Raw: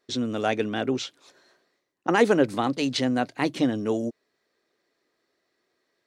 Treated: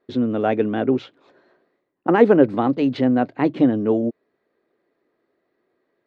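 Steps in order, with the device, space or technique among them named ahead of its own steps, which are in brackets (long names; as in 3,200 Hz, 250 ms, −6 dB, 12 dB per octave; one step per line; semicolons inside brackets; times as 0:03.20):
phone in a pocket (low-pass filter 3,200 Hz 12 dB per octave; parametric band 310 Hz +4.5 dB 2.7 octaves; high-shelf EQ 2,200 Hz −9.5 dB)
parametric band 5,800 Hz −4.5 dB 0.25 octaves
level +3 dB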